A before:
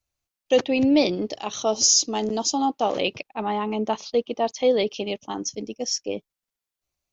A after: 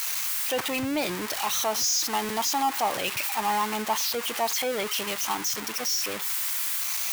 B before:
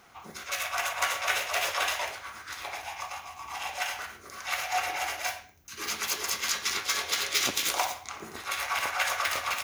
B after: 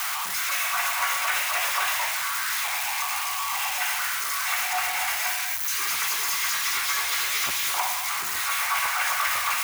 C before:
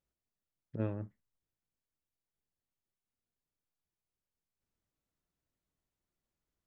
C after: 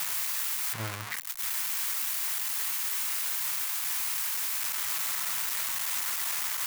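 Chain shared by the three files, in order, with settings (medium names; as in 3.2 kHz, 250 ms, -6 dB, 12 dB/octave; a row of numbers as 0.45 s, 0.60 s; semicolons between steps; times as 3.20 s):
zero-crossing glitches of -12 dBFS; treble shelf 3.2 kHz -8.5 dB; in parallel at +1 dB: peak limiter -19 dBFS; on the sum: graphic EQ 125/250/500/1000/2000 Hz +3/-6/-6/+8/+5 dB; trim -8.5 dB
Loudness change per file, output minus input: -2.5 LU, +6.0 LU, +12.5 LU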